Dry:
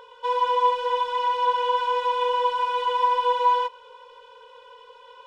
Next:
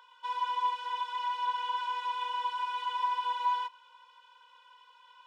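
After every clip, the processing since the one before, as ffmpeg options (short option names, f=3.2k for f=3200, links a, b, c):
-af "highpass=f=940:w=0.5412,highpass=f=940:w=1.3066,volume=-7dB"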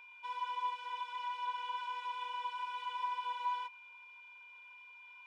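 -af "aeval=exprs='val(0)+0.00501*sin(2*PI*2400*n/s)':c=same,bandreject=f=4.2k:w=21,volume=-7dB"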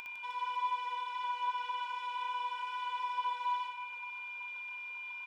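-af "acompressor=mode=upward:threshold=-40dB:ratio=2.5,aecho=1:1:60|156|309.6|555.4|948.6:0.631|0.398|0.251|0.158|0.1"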